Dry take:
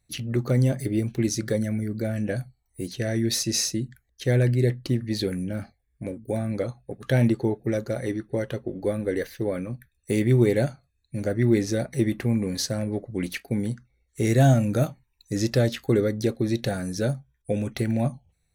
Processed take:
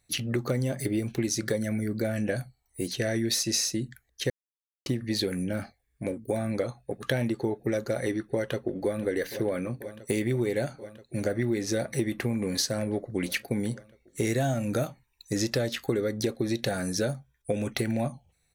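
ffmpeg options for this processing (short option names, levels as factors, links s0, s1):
-filter_complex "[0:a]asplit=2[s0][s1];[s1]afade=t=in:st=8.19:d=0.01,afade=t=out:st=9.01:d=0.01,aecho=0:1:490|980|1470|1960|2450|2940|3430|3920|4410|4900|5390|5880:0.141254|0.120066|0.102056|0.0867475|0.0737353|0.062675|0.0532738|0.0452827|0.0384903|0.0327168|0.0278092|0.0236379[s2];[s0][s2]amix=inputs=2:normalize=0,asplit=3[s3][s4][s5];[s3]atrim=end=4.3,asetpts=PTS-STARTPTS,afade=t=out:st=4.296:d=0.004:c=hsin[s6];[s4]atrim=start=4.3:end=4.86,asetpts=PTS-STARTPTS,volume=0[s7];[s5]atrim=start=4.86,asetpts=PTS-STARTPTS,afade=t=in:d=0.004:c=hsin[s8];[s6][s7][s8]concat=n=3:v=0:a=1,lowshelf=f=250:g=-8.5,acompressor=threshold=0.0355:ratio=6,volume=1.78"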